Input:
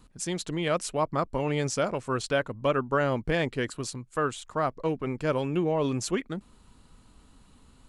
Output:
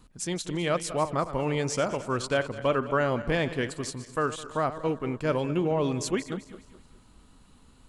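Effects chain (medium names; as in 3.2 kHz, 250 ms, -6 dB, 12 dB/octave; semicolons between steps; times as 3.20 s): backward echo that repeats 104 ms, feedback 60%, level -13 dB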